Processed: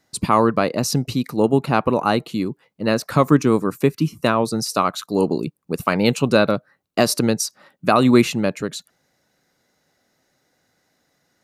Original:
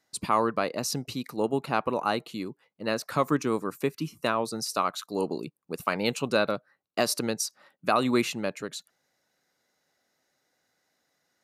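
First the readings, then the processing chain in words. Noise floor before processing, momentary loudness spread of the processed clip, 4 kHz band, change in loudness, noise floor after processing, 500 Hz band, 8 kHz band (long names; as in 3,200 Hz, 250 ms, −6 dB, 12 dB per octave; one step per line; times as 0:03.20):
−76 dBFS, 10 LU, +6.5 dB, +9.5 dB, −69 dBFS, +9.0 dB, +6.5 dB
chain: low-shelf EQ 280 Hz +10 dB
level +6.5 dB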